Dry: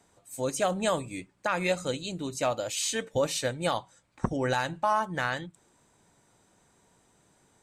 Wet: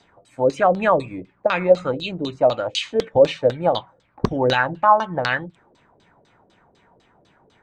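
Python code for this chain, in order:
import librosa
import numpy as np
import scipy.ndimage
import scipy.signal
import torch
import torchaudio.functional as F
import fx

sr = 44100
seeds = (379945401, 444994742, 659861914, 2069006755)

y = fx.filter_lfo_lowpass(x, sr, shape='saw_down', hz=4.0, low_hz=420.0, high_hz=4700.0, q=3.3)
y = F.gain(torch.from_numpy(y), 6.0).numpy()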